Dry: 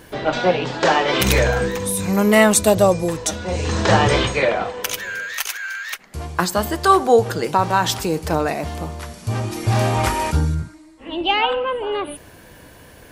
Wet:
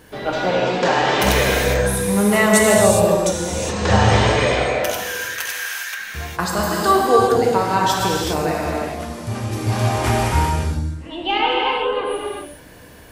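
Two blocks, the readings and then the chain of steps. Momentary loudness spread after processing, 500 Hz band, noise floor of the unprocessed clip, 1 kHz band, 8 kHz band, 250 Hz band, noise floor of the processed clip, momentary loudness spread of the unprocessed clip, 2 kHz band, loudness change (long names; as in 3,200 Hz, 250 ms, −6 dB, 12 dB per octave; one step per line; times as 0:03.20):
12 LU, +1.0 dB, −45 dBFS, +1.0 dB, +1.0 dB, +0.5 dB, −41 dBFS, 13 LU, +1.0 dB, +0.5 dB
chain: reverb whose tail is shaped and stops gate 440 ms flat, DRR −3.5 dB
level −4 dB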